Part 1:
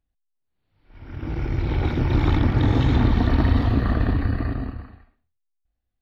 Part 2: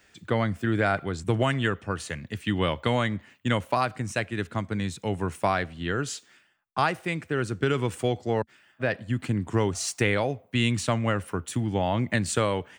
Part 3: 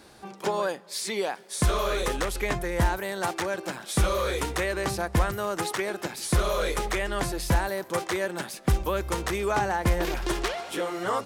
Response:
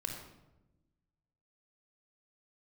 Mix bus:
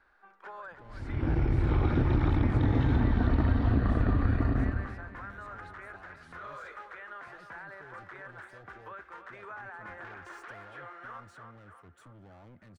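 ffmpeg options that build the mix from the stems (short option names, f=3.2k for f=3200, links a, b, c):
-filter_complex "[0:a]acompressor=threshold=-23dB:ratio=6,volume=1.5dB,asplit=2[a][b];[b]volume=-19dB[c];[1:a]alimiter=limit=-19.5dB:level=0:latency=1:release=399,asoftclip=type=tanh:threshold=-37dB,adelay=500,volume=-13.5dB[d];[2:a]bandpass=f=1.5k:t=q:w=3.3:csg=0,volume=-2dB,asplit=2[e][f];[f]volume=-12dB[g];[d][e]amix=inputs=2:normalize=0,alimiter=level_in=9.5dB:limit=-24dB:level=0:latency=1:release=35,volume=-9.5dB,volume=0dB[h];[c][g]amix=inputs=2:normalize=0,aecho=0:1:309|618|927|1236|1545|1854|2163|2472:1|0.56|0.314|0.176|0.0983|0.0551|0.0308|0.0173[i];[a][h][i]amix=inputs=3:normalize=0,highshelf=f=2.7k:g=-11.5"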